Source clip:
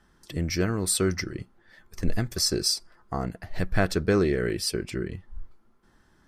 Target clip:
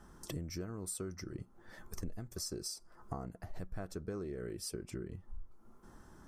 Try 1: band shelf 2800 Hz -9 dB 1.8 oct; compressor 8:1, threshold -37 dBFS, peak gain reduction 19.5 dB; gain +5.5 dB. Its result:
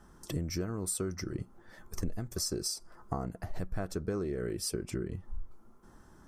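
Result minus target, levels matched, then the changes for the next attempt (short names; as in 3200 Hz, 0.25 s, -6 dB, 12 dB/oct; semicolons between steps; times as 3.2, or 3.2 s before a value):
compressor: peak gain reduction -7 dB
change: compressor 8:1, threshold -45 dBFS, peak gain reduction 26.5 dB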